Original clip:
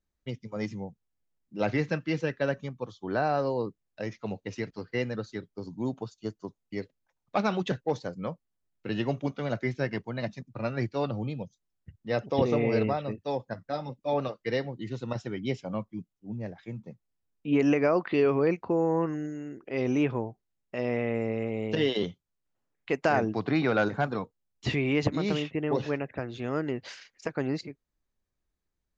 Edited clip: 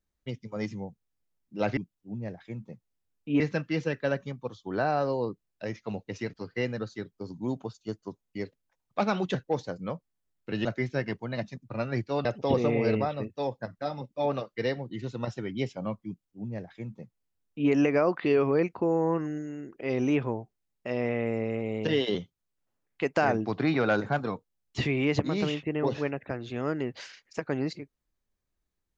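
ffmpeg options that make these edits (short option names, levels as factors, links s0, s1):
-filter_complex "[0:a]asplit=5[s0][s1][s2][s3][s4];[s0]atrim=end=1.772[s5];[s1]atrim=start=15.948:end=17.582[s6];[s2]atrim=start=1.768:end=9.022[s7];[s3]atrim=start=9.498:end=11.102[s8];[s4]atrim=start=12.128[s9];[s5][s6]acrossfade=d=0.004:c1=hsin:c2=hsin[s10];[s10][s7]acrossfade=d=0.004:c1=hsin:c2=hsin[s11];[s11][s8]acrossfade=d=0.004:c1=hsin:c2=hsin[s12];[s12][s9]acrossfade=d=0.004:c1=hsin:c2=hsin"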